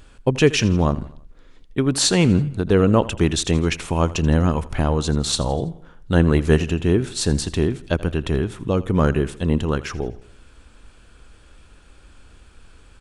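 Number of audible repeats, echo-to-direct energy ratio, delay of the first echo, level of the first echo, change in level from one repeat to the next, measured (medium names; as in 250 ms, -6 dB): 3, -17.5 dB, 82 ms, -18.5 dB, -6.5 dB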